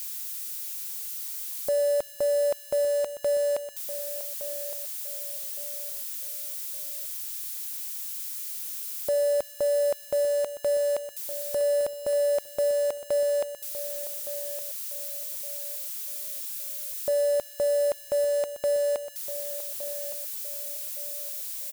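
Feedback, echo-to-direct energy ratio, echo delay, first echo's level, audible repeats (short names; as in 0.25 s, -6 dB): 31%, -12.5 dB, 1.164 s, -13.0 dB, 3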